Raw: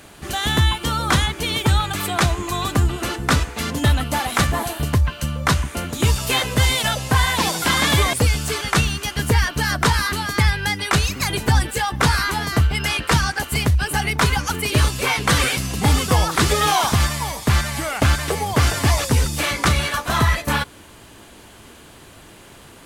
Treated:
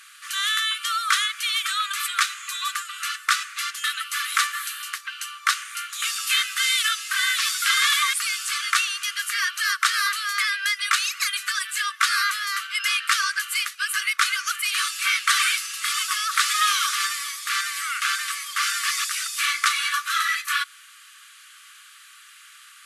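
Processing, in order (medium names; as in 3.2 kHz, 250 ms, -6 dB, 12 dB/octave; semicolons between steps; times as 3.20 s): brick-wall FIR band-pass 1.1–13 kHz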